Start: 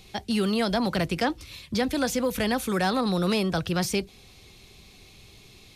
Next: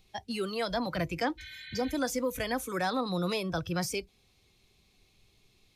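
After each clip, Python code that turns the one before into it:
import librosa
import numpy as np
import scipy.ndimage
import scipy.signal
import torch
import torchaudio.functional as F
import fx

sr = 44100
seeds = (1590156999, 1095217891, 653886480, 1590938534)

y = fx.noise_reduce_blind(x, sr, reduce_db=11)
y = fx.spec_repair(y, sr, seeds[0], start_s=1.41, length_s=0.48, low_hz=1500.0, high_hz=4400.0, source='after')
y = F.gain(torch.from_numpy(y), -4.5).numpy()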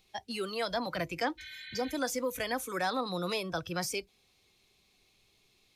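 y = fx.low_shelf(x, sr, hz=210.0, db=-10.5)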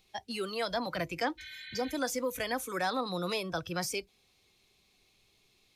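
y = x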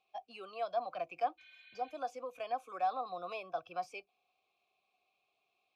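y = fx.vowel_filter(x, sr, vowel='a')
y = F.gain(torch.from_numpy(y), 3.5).numpy()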